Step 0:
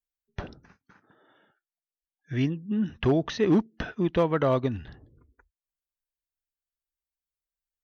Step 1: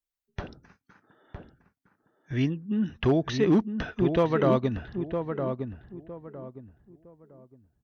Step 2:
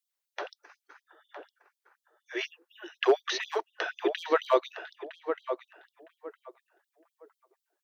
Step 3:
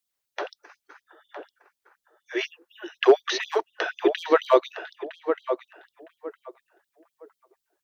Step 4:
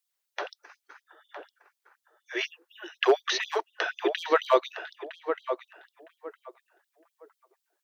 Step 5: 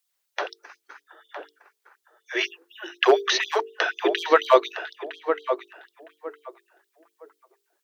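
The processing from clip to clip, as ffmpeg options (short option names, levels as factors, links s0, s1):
-filter_complex "[0:a]asplit=2[s0][s1];[s1]adelay=960,lowpass=f=1200:p=1,volume=0.501,asplit=2[s2][s3];[s3]adelay=960,lowpass=f=1200:p=1,volume=0.29,asplit=2[s4][s5];[s5]adelay=960,lowpass=f=1200:p=1,volume=0.29,asplit=2[s6][s7];[s7]adelay=960,lowpass=f=1200:p=1,volume=0.29[s8];[s0][s2][s4][s6][s8]amix=inputs=5:normalize=0"
-af "afftfilt=real='re*gte(b*sr/1024,300*pow(3200/300,0.5+0.5*sin(2*PI*4.1*pts/sr)))':imag='im*gte(b*sr/1024,300*pow(3200/300,0.5+0.5*sin(2*PI*4.1*pts/sr)))':win_size=1024:overlap=0.75,volume=1.68"
-af "lowshelf=f=340:g=7.5,volume=1.58"
-af "highpass=f=690:p=1"
-af "bandreject=f=50:t=h:w=6,bandreject=f=100:t=h:w=6,bandreject=f=150:t=h:w=6,bandreject=f=200:t=h:w=6,bandreject=f=250:t=h:w=6,bandreject=f=300:t=h:w=6,bandreject=f=350:t=h:w=6,bandreject=f=400:t=h:w=6,bandreject=f=450:t=h:w=6,volume=1.88"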